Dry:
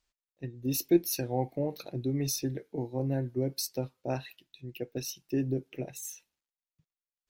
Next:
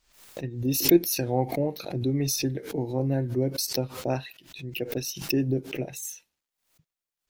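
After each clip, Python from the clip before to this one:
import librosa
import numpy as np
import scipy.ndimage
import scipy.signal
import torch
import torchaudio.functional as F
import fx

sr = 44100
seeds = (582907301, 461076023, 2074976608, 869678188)

y = fx.pre_swell(x, sr, db_per_s=99.0)
y = y * 10.0 ** (4.5 / 20.0)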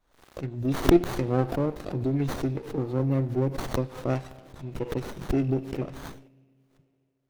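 y = fx.rev_spring(x, sr, rt60_s=2.4, pass_ms=(37, 46), chirp_ms=70, drr_db=16.5)
y = fx.spec_box(y, sr, start_s=6.28, length_s=0.43, low_hz=260.0, high_hz=8900.0, gain_db=-7)
y = fx.running_max(y, sr, window=17)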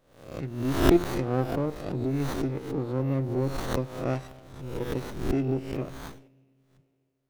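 y = fx.spec_swells(x, sr, rise_s=0.61)
y = y * 10.0 ** (-2.5 / 20.0)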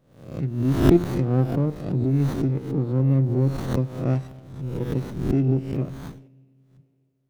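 y = fx.peak_eq(x, sr, hz=150.0, db=13.0, octaves=2.2)
y = y * 10.0 ** (-3.0 / 20.0)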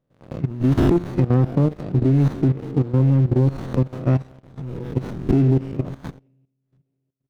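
y = fx.lowpass(x, sr, hz=3800.0, slope=6)
y = fx.leveller(y, sr, passes=2)
y = fx.level_steps(y, sr, step_db=15)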